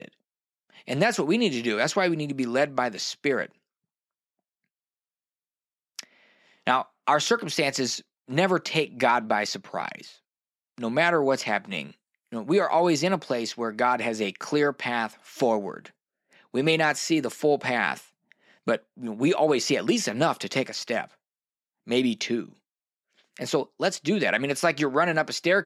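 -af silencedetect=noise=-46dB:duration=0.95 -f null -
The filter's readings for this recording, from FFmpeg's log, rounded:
silence_start: 3.51
silence_end: 5.99 | silence_duration: 2.48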